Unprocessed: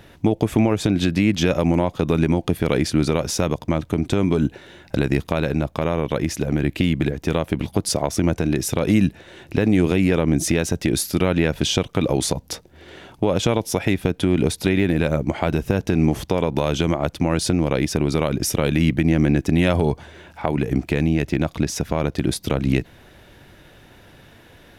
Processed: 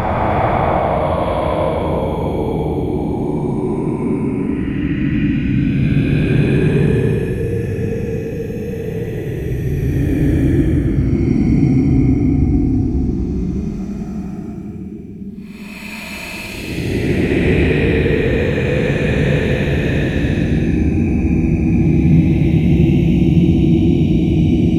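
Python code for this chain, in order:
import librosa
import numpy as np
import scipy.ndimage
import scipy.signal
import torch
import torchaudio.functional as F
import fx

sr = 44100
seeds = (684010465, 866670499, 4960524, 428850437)

y = fx.low_shelf(x, sr, hz=170.0, db=6.0)
y = fx.hum_notches(y, sr, base_hz=50, count=8)
y = fx.paulstretch(y, sr, seeds[0], factor=36.0, window_s=0.05, from_s=20.44)
y = y * librosa.db_to_amplitude(3.5)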